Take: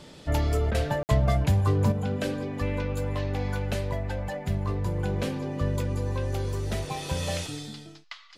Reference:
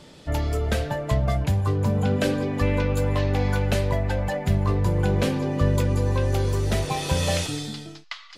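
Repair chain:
repair the gap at 0:01.03, 59 ms
repair the gap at 0:00.71, 35 ms
level 0 dB, from 0:01.92 +6.5 dB

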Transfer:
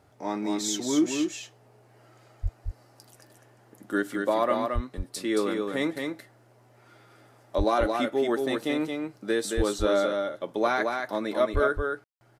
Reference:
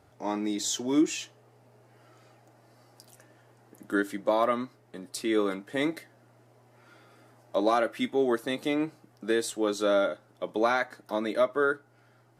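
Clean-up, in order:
high-pass at the plosives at 0:02.42/0:04.74/0:07.57/0:09.56/0:11.53
ambience match 0:12.04–0:12.21
echo removal 223 ms −4.5 dB

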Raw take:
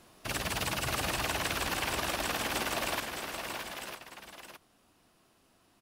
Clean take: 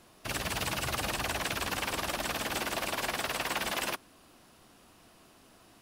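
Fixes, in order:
echo removal 613 ms −7 dB
level correction +9 dB, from 0:03.00

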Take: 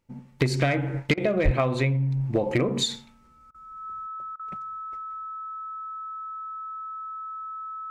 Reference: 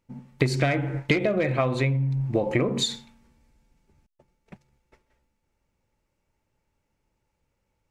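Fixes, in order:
clipped peaks rebuilt −13 dBFS
notch filter 1,300 Hz, Q 30
0:01.44–0:01.56: high-pass filter 140 Hz 24 dB per octave
repair the gap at 0:01.14/0:03.51/0:04.36, 33 ms

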